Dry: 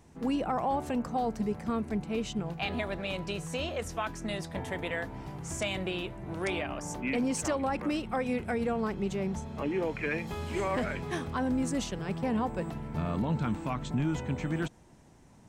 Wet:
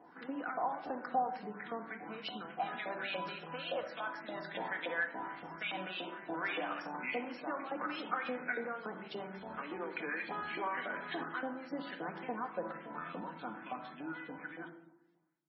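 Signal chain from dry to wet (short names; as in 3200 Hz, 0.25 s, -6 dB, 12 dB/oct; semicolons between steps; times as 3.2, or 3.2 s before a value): ending faded out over 4.35 s; high shelf 4900 Hz +9.5 dB; limiter -24.5 dBFS, peak gain reduction 9.5 dB; compressor 8:1, threshold -36 dBFS, peak gain reduction 8 dB; LFO band-pass saw up 3.5 Hz 610–3100 Hz; speaker cabinet 120–7300 Hz, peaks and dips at 120 Hz -8 dB, 180 Hz +5 dB, 320 Hz +9 dB, 1500 Hz +7 dB, 2600 Hz -5 dB; 6.34–8.72 frequency-shifting echo 82 ms, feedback 43%, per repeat +70 Hz, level -15.5 dB; shoebox room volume 2200 m³, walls furnished, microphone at 1.9 m; gain +8 dB; MP3 16 kbps 24000 Hz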